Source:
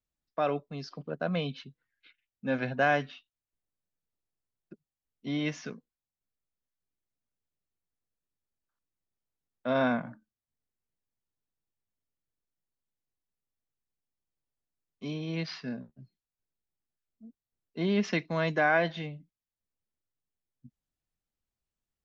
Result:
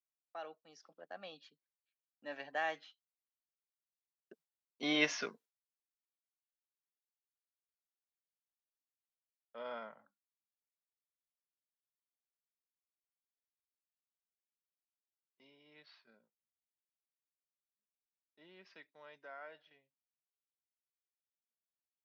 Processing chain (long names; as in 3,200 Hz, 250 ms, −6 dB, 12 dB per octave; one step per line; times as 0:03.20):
source passing by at 0:05.02, 30 m/s, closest 12 metres
noise gate with hold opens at −59 dBFS
high-pass filter 520 Hz 12 dB per octave
level +6 dB